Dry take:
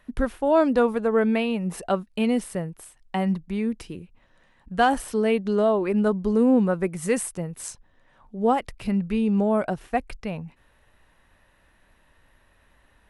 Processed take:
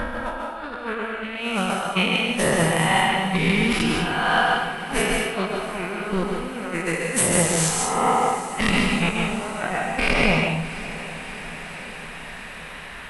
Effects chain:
peak hold with a rise ahead of every peak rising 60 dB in 1.60 s
flat-topped bell 1,900 Hz +9 dB 2.5 octaves
in parallel at −0.5 dB: brickwall limiter −10 dBFS, peak gain reduction 10.5 dB
on the sum: compressor whose output falls as the input rises −20 dBFS, ratio −0.5
on a send: feedback delay with all-pass diffusion 635 ms, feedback 68%, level −15 dB
on the sum: dense smooth reverb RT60 0.56 s, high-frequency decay 1×, pre-delay 120 ms, DRR 1 dB
one half of a high-frequency compander encoder only
level −4.5 dB

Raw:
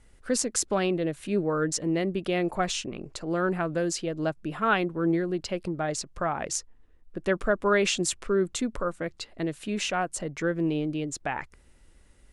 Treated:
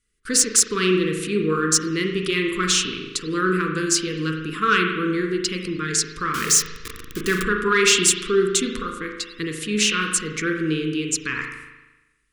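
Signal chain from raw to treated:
0:06.34–0:07.43: converter with a step at zero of −32 dBFS
noise gate with hold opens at −43 dBFS
high-shelf EQ 2,000 Hz +10 dB
soft clipping −10.5 dBFS, distortion −20 dB
elliptic band-stop filter 460–1,100 Hz, stop band 40 dB
low-shelf EQ 150 Hz −5 dB
0:08.74–0:09.37: downward compressor, threshold −31 dBFS, peak gain reduction 6 dB
spring reverb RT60 1.1 s, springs 38 ms, chirp 70 ms, DRR 2 dB
level +4.5 dB

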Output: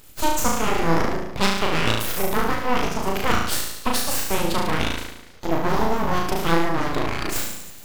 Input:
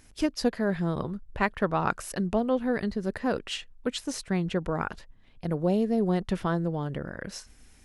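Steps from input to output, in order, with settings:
high-shelf EQ 5,600 Hz +12 dB
speech leveller within 4 dB 0.5 s
on a send: flutter between parallel walls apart 6.2 metres, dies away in 0.92 s
on the sum: full-wave rectification
formants moved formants +5 semitones
level +5 dB

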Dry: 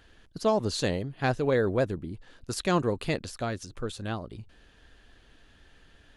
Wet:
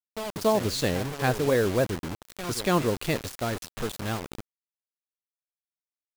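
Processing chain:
echo ahead of the sound 283 ms −13 dB
bit reduction 6 bits
level +1.5 dB

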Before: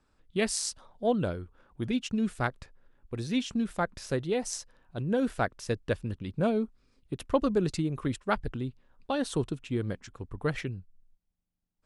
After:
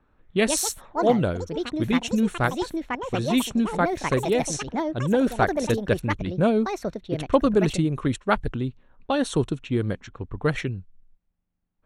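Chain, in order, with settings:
delay with pitch and tempo change per echo 226 ms, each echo +6 semitones, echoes 2, each echo −6 dB
low-pass that shuts in the quiet parts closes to 2,100 Hz, open at −25.5 dBFS
Butterworth band-reject 4,900 Hz, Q 6.9
level +6.5 dB

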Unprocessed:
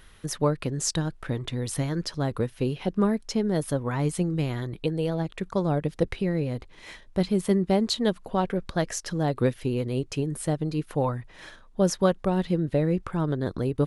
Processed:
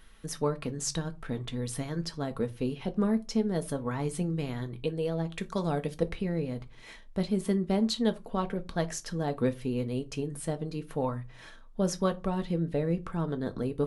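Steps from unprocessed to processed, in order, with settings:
0:05.32–0:05.98: high-shelf EQ 2,100 Hz +9.5 dB
on a send: convolution reverb RT60 0.25 s, pre-delay 4 ms, DRR 7.5 dB
on the sum: level −5.5 dB

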